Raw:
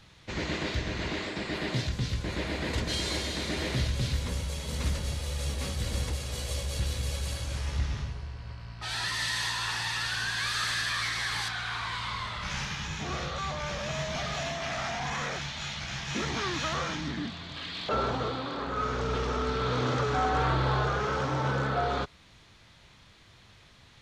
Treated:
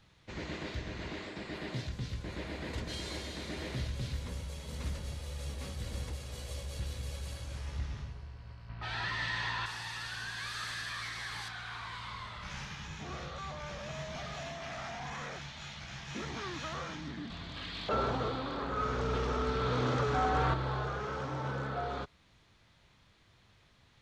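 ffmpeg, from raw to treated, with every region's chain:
ffmpeg -i in.wav -filter_complex "[0:a]asettb=1/sr,asplit=3[link_01][link_02][link_03];[link_01]atrim=end=8.694[link_04];[link_02]atrim=start=8.69:end=9.66,asetpts=PTS-STARTPTS,afade=type=in:duration=0.004:curve=qsin,afade=type=out:start_time=0.966:duration=0.004:curve=qsin,lowpass=3100,acontrast=80[link_05];[link_03]atrim=start=9.656[link_06];[link_04][link_05]acrossfade=duration=0.004:curve1=hsin:curve2=qsin[link_07];[link_07][link_06]acrossfade=duration=0.004:curve1=qsin:curve2=hsin,asettb=1/sr,asplit=3[link_08][link_09][link_10];[link_08]atrim=end=17.304[link_11];[link_09]atrim=start=17.3:end=20.54,asetpts=PTS-STARTPTS,afade=type=in:duration=0.004:curve=qsin,afade=type=out:start_time=3.236:duration=0.004:curve=qsin,acontrast=30,aeval=exprs='val(0)+0.00794*(sin(2*PI*50*n/s)+sin(2*PI*2*50*n/s)/2+sin(2*PI*3*50*n/s)/3+sin(2*PI*4*50*n/s)/4+sin(2*PI*5*50*n/s)/5)':channel_layout=same[link_12];[link_10]atrim=start=20.536[link_13];[link_11][link_12]acrossfade=duration=0.004:curve1=hsin:curve2=qsin[link_14];[link_14][link_13]acrossfade=duration=0.004:curve1=qsin:curve2=hsin,lowpass=frequency=2000:poles=1,aemphasis=mode=production:type=50kf,volume=-7.5dB" out.wav

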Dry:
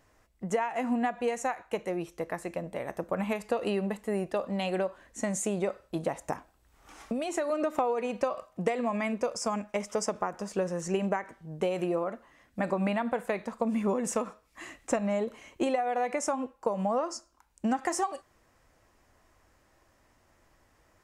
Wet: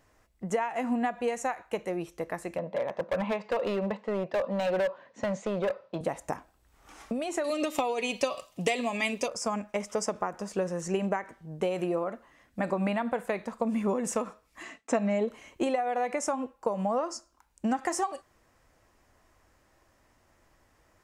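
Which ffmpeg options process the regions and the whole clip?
ffmpeg -i in.wav -filter_complex "[0:a]asettb=1/sr,asplit=3[link_01][link_02][link_03];[link_01]atrim=end=2.584[link_04];[link_02]atrim=start=2.58:end=6.01,asetpts=PTS-STARTPTS,afade=type=in:duration=0.004:curve=qsin,afade=type=out:start_time=3.426:duration=0.004:curve=qsin,highpass=frequency=130:width=0.5412,highpass=frequency=130:width=1.3066,equalizer=frequency=320:width_type=q:width=4:gain=-5,equalizer=frequency=550:width_type=q:width=4:gain=9,equalizer=frequency=980:width_type=q:width=4:gain=7,lowpass=frequency=4600:width=0.5412,lowpass=frequency=4600:width=1.3066,asoftclip=type=hard:threshold=-24dB[link_05];[link_03]atrim=start=6.006[link_06];[link_04][link_05]acrossfade=duration=0.004:curve1=hsin:curve2=qsin[link_07];[link_07][link_06]acrossfade=duration=0.004:curve1=qsin:curve2=hsin,asettb=1/sr,asplit=3[link_08][link_09][link_10];[link_08]atrim=end=7.444[link_11];[link_09]atrim=start=7.44:end=9.28,asetpts=PTS-STARTPTS,afade=type=in:duration=0.004:curve=qsin,afade=type=out:start_time=1.836:duration=0.004:curve=qsin,highshelf=frequency=2100:width_type=q:width=1.5:gain=11,bandreject=frequency=1500:width=12,aecho=1:1:7.1:0.36,atrim=end_sample=81144[link_12];[link_10]atrim=start=9.276[link_13];[link_11][link_12]acrossfade=duration=0.004:curve1=hsin:curve2=qsin[link_14];[link_14][link_13]acrossfade=duration=0.004:curve1=qsin:curve2=hsin,asettb=1/sr,asplit=3[link_15][link_16][link_17];[link_15]atrim=end=14.634[link_18];[link_16]atrim=start=14.63:end=15.3,asetpts=PTS-STARTPTS,afade=type=in:duration=0.004:curve=qsin,afade=type=out:start_time=0.666:duration=0.004:curve=qsin,agate=range=-33dB:threshold=-53dB:ratio=3:release=100:detection=peak,highpass=140,lowpass=6900,aecho=1:1:4.5:0.49,atrim=end_sample=29547[link_19];[link_17]atrim=start=15.296[link_20];[link_18][link_19]acrossfade=duration=0.004:curve1=hsin:curve2=qsin[link_21];[link_21][link_20]acrossfade=duration=0.004:curve1=qsin:curve2=hsin" out.wav

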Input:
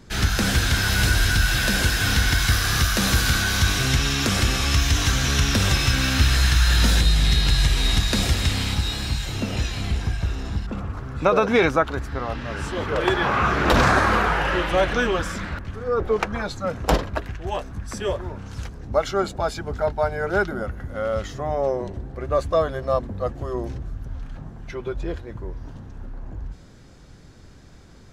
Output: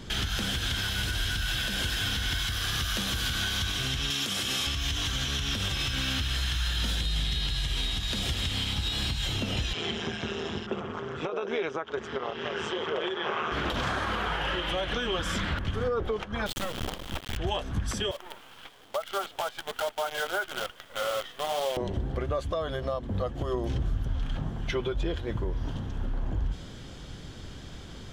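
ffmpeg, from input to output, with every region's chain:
ffmpeg -i in.wav -filter_complex "[0:a]asettb=1/sr,asplit=3[link_01][link_02][link_03];[link_01]atrim=end=4.104[link_04];[link_02]atrim=start=4.1:end=4.67,asetpts=PTS-STARTPTS,afade=type=in:duration=0.004:curve=qsin,afade=type=out:start_time=0.566:duration=0.004:curve=qsin,highpass=140,equalizer=frequency=12000:width=0.38:gain=7[link_05];[link_03]atrim=start=4.666[link_06];[link_04][link_05]acrossfade=duration=0.004:curve1=hsin:curve2=qsin[link_07];[link_07][link_06]acrossfade=duration=0.004:curve1=qsin:curve2=hsin,asettb=1/sr,asplit=3[link_08][link_09][link_10];[link_08]atrim=end=9.734[link_11];[link_09]atrim=start=9.73:end=13.52,asetpts=PTS-STARTPTS,afade=type=in:duration=0.004:curve=qsin,afade=type=out:start_time=3.786:duration=0.004:curve=qsin,tremolo=f=160:d=0.75,highpass=220,equalizer=frequency=280:width_type=q:width=4:gain=-9,equalizer=frequency=400:width_type=q:width=4:gain=10,equalizer=frequency=4300:width_type=q:width=4:gain=-9,lowpass=frequency=6700:width=0.5412,lowpass=frequency=6700:width=1.3066[link_12];[link_10]atrim=start=13.516[link_13];[link_11][link_12]acrossfade=duration=0.004:curve1=hsin:curve2=qsin[link_14];[link_14][link_13]acrossfade=duration=0.004:curve1=qsin:curve2=hsin,asettb=1/sr,asplit=3[link_15][link_16][link_17];[link_15]atrim=end=16.464[link_18];[link_16]atrim=start=16.46:end=17.37,asetpts=PTS-STARTPTS,afade=type=in:duration=0.004:curve=qsin,afade=type=out:start_time=0.906:duration=0.004:curve=qsin,highshelf=frequency=8300:gain=-5,bandreject=frequency=50:width_type=h:width=6,bandreject=frequency=100:width_type=h:width=6,acrusher=bits=3:dc=4:mix=0:aa=0.000001[link_19];[link_17]atrim=start=17.366[link_20];[link_18][link_19]acrossfade=duration=0.004:curve1=hsin:curve2=qsin[link_21];[link_21][link_20]acrossfade=duration=0.004:curve1=qsin:curve2=hsin,asettb=1/sr,asplit=3[link_22][link_23][link_24];[link_22]atrim=end=18.114[link_25];[link_23]atrim=start=18.11:end=21.77,asetpts=PTS-STARTPTS,afade=type=in:duration=0.004:curve=qsin,afade=type=out:start_time=3.656:duration=0.004:curve=qsin,highpass=690,lowpass=2200,flanger=delay=1.5:depth=6.7:regen=60:speed=1.1:shape=sinusoidal,acrusher=bits=7:dc=4:mix=0:aa=0.000001[link_26];[link_24]atrim=start=21.766[link_27];[link_25][link_26]acrossfade=duration=0.004:curve1=hsin:curve2=qsin[link_28];[link_28][link_27]acrossfade=duration=0.004:curve1=qsin:curve2=hsin,equalizer=frequency=3200:width=4.2:gain=12.5,acompressor=threshold=-27dB:ratio=6,alimiter=level_in=0.5dB:limit=-24dB:level=0:latency=1:release=207,volume=-0.5dB,volume=4.5dB" out.wav

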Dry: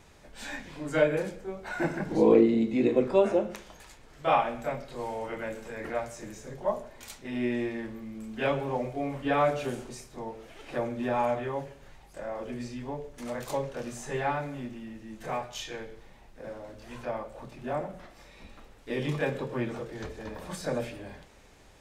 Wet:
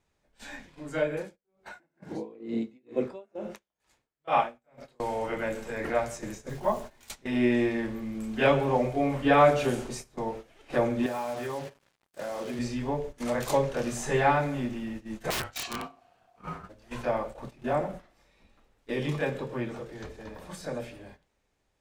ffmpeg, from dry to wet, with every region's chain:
ffmpeg -i in.wav -filter_complex "[0:a]asettb=1/sr,asplit=3[link_01][link_02][link_03];[link_01]atrim=end=1.214[link_04];[link_02]atrim=start=1.21:end=5,asetpts=PTS-STARTPTS,afade=type=in:duration=0.004:curve=qsin,afade=type=out:start_time=3.786:duration=0.004:curve=qsin,highpass=frequency=93:poles=1,aeval=exprs='val(0)*pow(10,-28*(0.5-0.5*cos(2*PI*2.2*n/s))/20)':channel_layout=same[link_05];[link_03]atrim=start=4.996[link_06];[link_04][link_05]acrossfade=duration=0.004:curve1=hsin:curve2=qsin[link_07];[link_07][link_06]acrossfade=duration=0.004:curve1=qsin:curve2=hsin,asettb=1/sr,asplit=3[link_08][link_09][link_10];[link_08]atrim=end=6.494[link_11];[link_09]atrim=start=6.49:end=7.08,asetpts=PTS-STARTPTS,afade=type=in:duration=0.004:curve=qsin,afade=type=out:start_time=0.586:duration=0.004:curve=qsin,equalizer=frequency=520:width=2.3:gain=-6,acrusher=bits=8:mix=0:aa=0.5,asplit=2[link_12][link_13];[link_13]adelay=14,volume=-12dB[link_14];[link_12][link_14]amix=inputs=2:normalize=0,atrim=end_sample=26019[link_15];[link_10]atrim=start=7.076[link_16];[link_11][link_15]acrossfade=duration=0.004:curve1=hsin:curve2=qsin[link_17];[link_17][link_16]acrossfade=duration=0.004:curve1=qsin:curve2=hsin,asettb=1/sr,asplit=3[link_18][link_19][link_20];[link_18]atrim=end=11.064[link_21];[link_19]atrim=start=11.06:end=12.59,asetpts=PTS-STARTPTS,afade=type=in:duration=0.004:curve=qsin,afade=type=out:start_time=1.526:duration=0.004:curve=qsin,highpass=130,acompressor=threshold=-37dB:ratio=4:attack=3.2:release=140:knee=1:detection=peak,acrusher=bits=7:mix=0:aa=0.5[link_22];[link_20]atrim=start=12.586[link_23];[link_21][link_22]acrossfade=duration=0.004:curve1=hsin:curve2=qsin[link_24];[link_24][link_23]acrossfade=duration=0.004:curve1=qsin:curve2=hsin,asettb=1/sr,asplit=3[link_25][link_26][link_27];[link_25]atrim=end=15.304[link_28];[link_26]atrim=start=15.3:end=16.69,asetpts=PTS-STARTPTS,afade=type=in:duration=0.004:curve=qsin,afade=type=out:start_time=1.386:duration=0.004:curve=qsin,aeval=exprs='(mod(29.9*val(0)+1,2)-1)/29.9':channel_layout=same,aeval=exprs='val(0)*sin(2*PI*710*n/s)':channel_layout=same[link_29];[link_27]atrim=start=16.686[link_30];[link_28][link_29]acrossfade=duration=0.004:curve1=hsin:curve2=qsin[link_31];[link_31][link_30]acrossfade=duration=0.004:curve1=qsin:curve2=hsin,agate=range=-15dB:threshold=-43dB:ratio=16:detection=peak,dynaudnorm=framelen=250:gausssize=31:maxgain=11.5dB,volume=-4.5dB" out.wav

